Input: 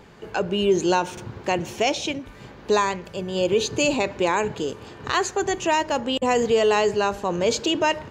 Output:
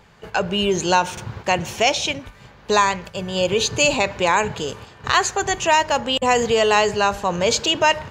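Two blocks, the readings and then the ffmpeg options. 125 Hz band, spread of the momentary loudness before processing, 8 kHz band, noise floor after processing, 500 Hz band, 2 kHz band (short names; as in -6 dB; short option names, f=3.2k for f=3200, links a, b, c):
+3.5 dB, 11 LU, +6.5 dB, -47 dBFS, +1.0 dB, +6.0 dB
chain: -af "agate=range=-7dB:threshold=-38dB:ratio=16:detection=peak,equalizer=f=320:w=1.2:g=-10.5,volume=6.5dB"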